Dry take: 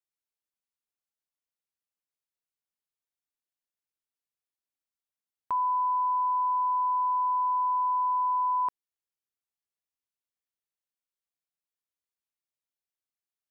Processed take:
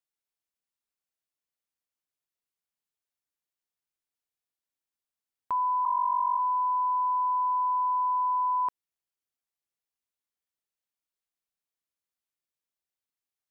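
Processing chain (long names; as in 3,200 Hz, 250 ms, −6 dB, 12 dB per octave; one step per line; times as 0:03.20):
0:05.85–0:06.39: three sine waves on the formant tracks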